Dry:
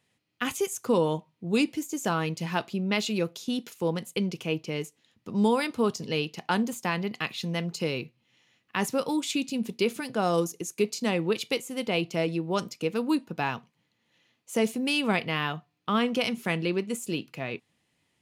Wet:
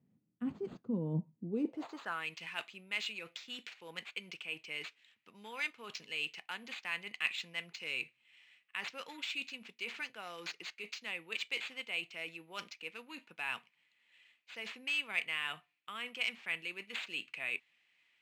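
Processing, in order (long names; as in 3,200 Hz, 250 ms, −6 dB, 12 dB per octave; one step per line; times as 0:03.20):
low-shelf EQ 200 Hz +4 dB
reversed playback
downward compressor 10 to 1, threshold −32 dBFS, peak gain reduction 15 dB
reversed playback
decimation without filtering 4×
band-pass filter sweep 200 Hz → 2,400 Hz, 0:01.37–0:02.24
level +7 dB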